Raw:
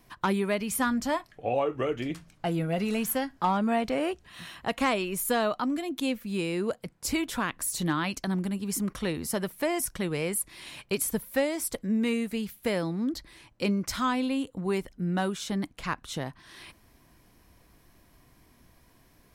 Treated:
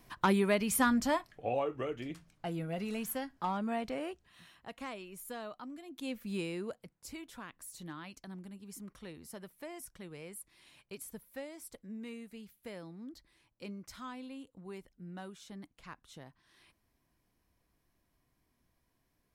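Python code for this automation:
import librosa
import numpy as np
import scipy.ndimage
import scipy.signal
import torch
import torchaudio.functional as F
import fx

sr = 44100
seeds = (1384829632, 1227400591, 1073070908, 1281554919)

y = fx.gain(x, sr, db=fx.line((0.95, -1.0), (1.96, -9.0), (3.9, -9.0), (4.61, -17.0), (5.84, -17.0), (6.28, -5.0), (7.12, -17.5)))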